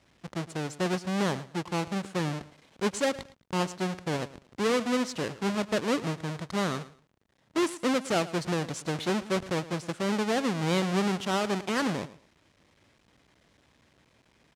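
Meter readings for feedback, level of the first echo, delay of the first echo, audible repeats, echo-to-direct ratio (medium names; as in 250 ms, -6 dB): 23%, -17.0 dB, 111 ms, 2, -17.0 dB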